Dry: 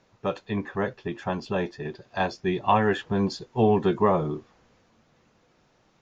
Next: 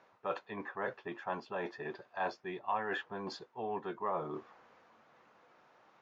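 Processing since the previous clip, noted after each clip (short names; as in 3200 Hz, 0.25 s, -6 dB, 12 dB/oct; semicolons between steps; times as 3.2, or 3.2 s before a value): reverse; compressor 8:1, threshold -33 dBFS, peak gain reduction 17.5 dB; reverse; band-pass 1100 Hz, Q 0.96; gain +4.5 dB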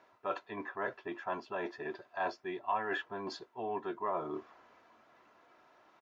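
comb 3 ms, depth 43%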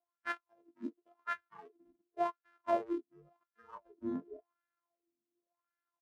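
sample sorter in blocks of 128 samples; spectral noise reduction 28 dB; wah 0.91 Hz 250–1600 Hz, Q 5.4; gain +12.5 dB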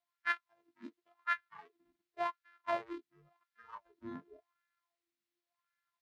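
graphic EQ 125/250/500/1000/2000/4000 Hz +4/-5/-6/+4/+9/+8 dB; gain -3.5 dB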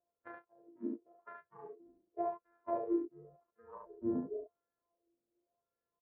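compressor 6:1, threshold -38 dBFS, peak gain reduction 11 dB; synth low-pass 490 Hz, resonance Q 4.3; on a send: early reflections 35 ms -4.5 dB, 71 ms -3.5 dB; on the sum: gain +5 dB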